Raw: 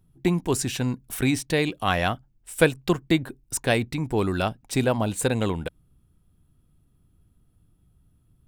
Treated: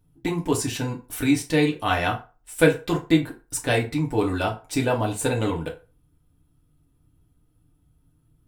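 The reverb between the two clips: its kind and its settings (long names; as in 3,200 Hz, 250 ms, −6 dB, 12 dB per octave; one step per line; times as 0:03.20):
feedback delay network reverb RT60 0.33 s, low-frequency decay 0.75×, high-frequency decay 0.7×, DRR −1.5 dB
level −3 dB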